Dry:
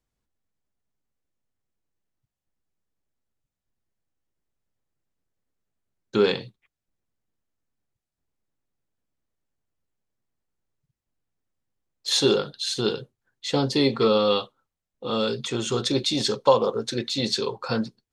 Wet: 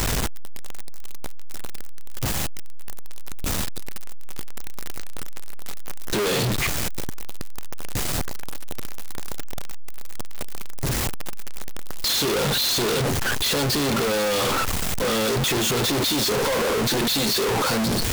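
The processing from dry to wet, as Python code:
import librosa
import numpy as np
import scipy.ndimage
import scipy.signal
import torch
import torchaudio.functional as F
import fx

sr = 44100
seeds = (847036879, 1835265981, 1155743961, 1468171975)

y = np.sign(x) * np.sqrt(np.mean(np.square(x)))
y = y * 10.0 ** (7.0 / 20.0)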